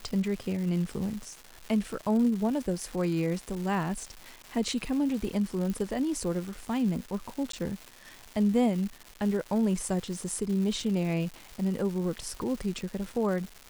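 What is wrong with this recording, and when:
crackle 440 per s -36 dBFS
5.70 s: pop -21 dBFS
7.52–7.53 s: dropout 13 ms

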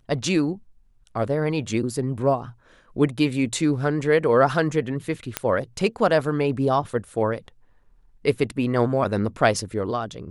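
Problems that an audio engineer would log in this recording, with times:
5.37 s: pop -6 dBFS

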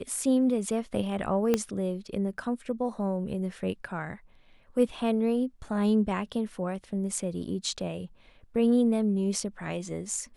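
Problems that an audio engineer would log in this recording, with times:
1.54 s: pop -11 dBFS

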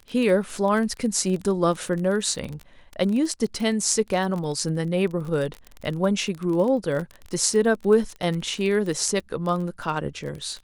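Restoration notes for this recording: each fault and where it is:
crackle 26 per s -28 dBFS

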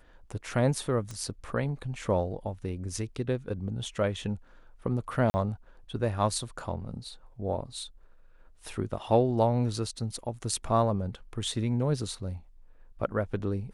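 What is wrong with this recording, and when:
1.11 s: pop -25 dBFS
5.30–5.34 s: dropout 40 ms

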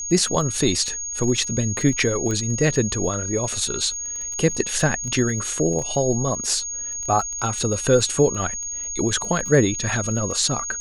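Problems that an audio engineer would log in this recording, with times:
crackle 15 per s -28 dBFS
whine 6.6 kHz -27 dBFS
2.31 s: pop -14 dBFS

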